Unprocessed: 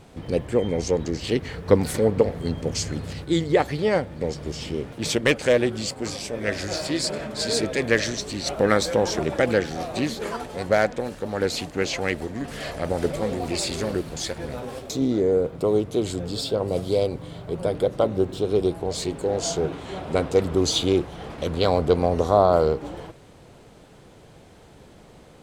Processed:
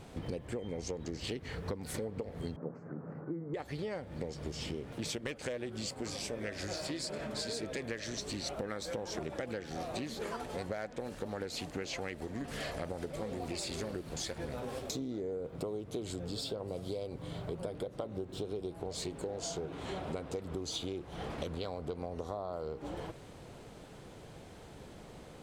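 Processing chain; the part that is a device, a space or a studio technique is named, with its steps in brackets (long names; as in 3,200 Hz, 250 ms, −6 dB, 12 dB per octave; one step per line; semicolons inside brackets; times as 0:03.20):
serial compression, leveller first (downward compressor 2.5 to 1, threshold −23 dBFS, peak gain reduction 9 dB; downward compressor 6 to 1, threshold −34 dBFS, peak gain reduction 15.5 dB)
0:02.56–0:03.54: elliptic band-pass filter 150–1,400 Hz, stop band 40 dB
level −2 dB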